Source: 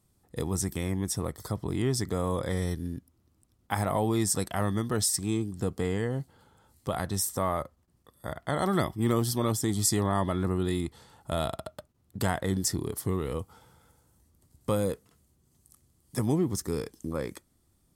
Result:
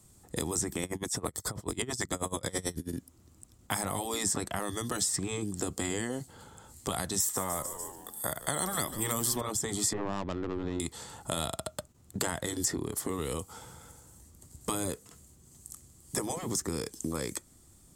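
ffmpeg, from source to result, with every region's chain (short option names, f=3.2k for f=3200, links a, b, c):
-filter_complex "[0:a]asettb=1/sr,asplit=3[a][b][c];[a]atrim=end=0.834[d];[b]atrim=start=0.83:end=2.93,asetpts=PTS-STARTPTS,afade=t=in:d=0.004:c=qsin,afade=t=out:st=2.096:d=0.004:c=qsin,acontrast=69,aeval=exprs='val(0)*pow(10,-31*(0.5-0.5*cos(2*PI*9.2*n/s))/20)':c=same[e];[c]atrim=start=2.926[f];[d][e]acrossfade=d=0.004:c1=hsin:c2=qsin[g];[g][f]acrossfade=d=0.004:c1=qsin:c2=hsin,asettb=1/sr,asplit=3[h][i][j];[h]atrim=end=7.204[k];[i]atrim=start=7.2:end=9.41,asetpts=PTS-STARTPTS,afade=t=in:d=0.004:c=qsin,afade=t=out:st=2.206:d=0.004:c=qsin,aemphasis=mode=production:type=bsi,asplit=5[l][m][n][o][p];[m]adelay=147,afreqshift=-96,volume=-17dB[q];[n]adelay=294,afreqshift=-192,volume=-23.2dB[r];[o]adelay=441,afreqshift=-288,volume=-29.4dB[s];[p]adelay=588,afreqshift=-384,volume=-35.6dB[t];[l][q][r][s][t]amix=inputs=5:normalize=0,atrim=end_sample=97461[u];[j]atrim=start=9.406[v];[k][u]acrossfade=d=0.004:c1=hsin:c2=qsin[w];[w][v]acrossfade=d=0.004:c1=qsin:c2=hsin,asettb=1/sr,asplit=3[x][y][z];[x]atrim=end=9.934[aa];[y]atrim=start=9.93:end=10.8,asetpts=PTS-STARTPTS,afade=t=in:d=0.004:c=qsin,afade=t=out:st=0.866:d=0.004:c=qsin,aeval=exprs='if(lt(val(0),0),0.708*val(0),val(0))':c=same,equalizer=f=13k:t=o:w=2.6:g=-11,adynamicsmooth=sensitivity=2:basefreq=530[ab];[z]atrim=start=10.796[ac];[aa][ab]acrossfade=d=0.004:c1=hsin:c2=qsin[ad];[ad][ac]acrossfade=d=0.004:c1=qsin:c2=hsin,afftfilt=real='re*lt(hypot(re,im),0.224)':imag='im*lt(hypot(re,im),0.224)':win_size=1024:overlap=0.75,equalizer=f=7.4k:w=2.1:g=10.5,acrossover=split=230|3100[ae][af][ag];[ae]acompressor=threshold=-49dB:ratio=4[ah];[af]acompressor=threshold=-43dB:ratio=4[ai];[ag]acompressor=threshold=-42dB:ratio=4[aj];[ah][ai][aj]amix=inputs=3:normalize=0,volume=8.5dB"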